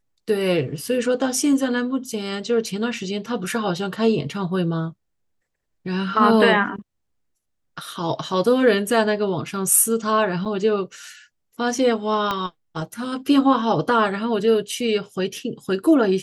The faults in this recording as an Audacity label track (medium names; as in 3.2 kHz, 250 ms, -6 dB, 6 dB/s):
10.450000	10.460000	dropout 6.5 ms
12.310000	12.310000	pop -10 dBFS